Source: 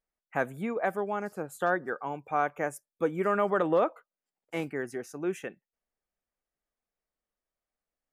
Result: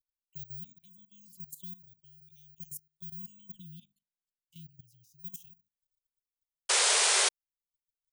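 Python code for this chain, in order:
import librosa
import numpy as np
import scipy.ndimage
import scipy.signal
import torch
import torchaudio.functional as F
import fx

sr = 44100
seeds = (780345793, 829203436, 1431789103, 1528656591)

y = scipy.signal.sosfilt(scipy.signal.cheby1(5, 1.0, [170.0, 3000.0], 'bandstop', fs=sr, output='sos'), x)
y = fx.peak_eq(y, sr, hz=2100.0, db=-10.0, octaves=0.71)
y = fx.hum_notches(y, sr, base_hz=50, count=5)
y = (np.kron(scipy.signal.resample_poly(y, 1, 2), np.eye(2)[0]) * 2)[:len(y)]
y = fx.level_steps(y, sr, step_db=15)
y = fx.high_shelf(y, sr, hz=5100.0, db=fx.steps((0.0, 5.5), (3.55, -6.0), (5.18, 8.5)))
y = fx.spec_paint(y, sr, seeds[0], shape='noise', start_s=6.69, length_s=0.6, low_hz=370.0, high_hz=10000.0, level_db=-25.0)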